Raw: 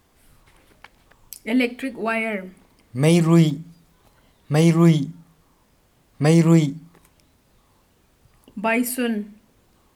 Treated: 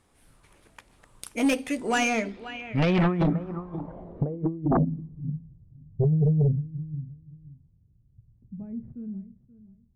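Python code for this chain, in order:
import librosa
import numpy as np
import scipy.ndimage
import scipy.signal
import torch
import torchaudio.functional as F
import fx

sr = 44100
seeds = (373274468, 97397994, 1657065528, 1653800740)

p1 = fx.doppler_pass(x, sr, speed_mps=24, closest_m=14.0, pass_at_s=4.35)
p2 = fx.sample_hold(p1, sr, seeds[0], rate_hz=8800.0, jitter_pct=0)
p3 = p1 + F.gain(torch.from_numpy(p2), -3.5).numpy()
p4 = fx.over_compress(p3, sr, threshold_db=-22.0, ratio=-0.5)
p5 = p4 + fx.echo_feedback(p4, sr, ms=529, feedback_pct=20, wet_db=-17.0, dry=0)
p6 = fx.filter_sweep_lowpass(p5, sr, from_hz=9500.0, to_hz=120.0, start_s=1.65, end_s=5.54, q=2.5)
p7 = fx.fold_sine(p6, sr, drive_db=8, ceiling_db=-8.5)
y = F.gain(torch.from_numpy(p7), -9.0).numpy()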